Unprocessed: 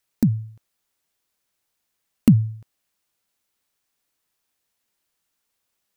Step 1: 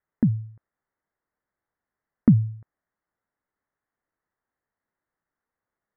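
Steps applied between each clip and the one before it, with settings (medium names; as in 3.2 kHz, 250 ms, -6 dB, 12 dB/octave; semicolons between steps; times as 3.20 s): steep low-pass 2 kHz 72 dB/octave; trim -2 dB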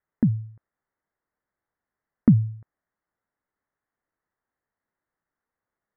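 no audible change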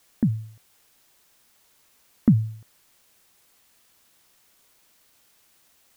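word length cut 10-bit, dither triangular; trim -1.5 dB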